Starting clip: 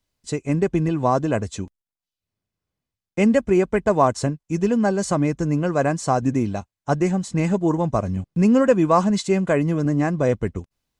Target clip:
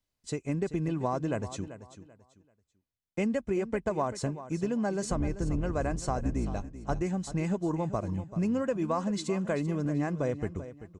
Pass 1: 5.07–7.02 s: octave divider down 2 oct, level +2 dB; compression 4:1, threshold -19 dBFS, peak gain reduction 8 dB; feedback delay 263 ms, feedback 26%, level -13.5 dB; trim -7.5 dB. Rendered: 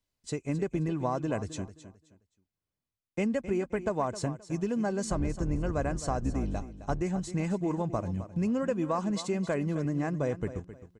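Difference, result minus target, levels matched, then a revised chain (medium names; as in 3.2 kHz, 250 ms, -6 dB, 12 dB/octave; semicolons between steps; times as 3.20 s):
echo 124 ms early
5.07–7.02 s: octave divider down 2 oct, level +2 dB; compression 4:1, threshold -19 dBFS, peak gain reduction 8 dB; feedback delay 387 ms, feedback 26%, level -13.5 dB; trim -7.5 dB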